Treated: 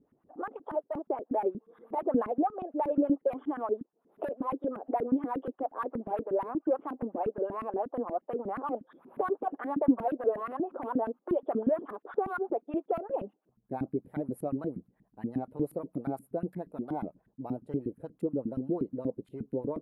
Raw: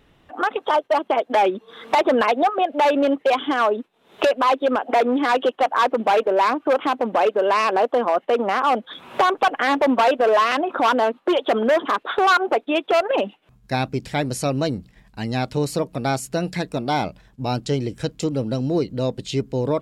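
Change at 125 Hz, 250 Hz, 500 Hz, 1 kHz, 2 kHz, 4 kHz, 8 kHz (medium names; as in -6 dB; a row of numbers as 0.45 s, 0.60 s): -15.0 dB, -7.0 dB, -12.0 dB, -16.0 dB, -24.5 dB, under -40 dB, under -25 dB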